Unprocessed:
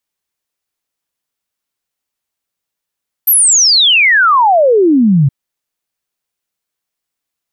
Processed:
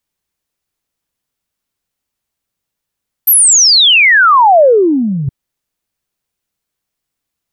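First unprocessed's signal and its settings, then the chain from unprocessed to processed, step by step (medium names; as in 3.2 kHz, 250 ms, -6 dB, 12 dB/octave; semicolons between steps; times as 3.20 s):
log sweep 13 kHz -> 130 Hz 2.02 s -5.5 dBFS
bass shelf 260 Hz +9.5 dB; compressor with a negative ratio -7 dBFS, ratio -0.5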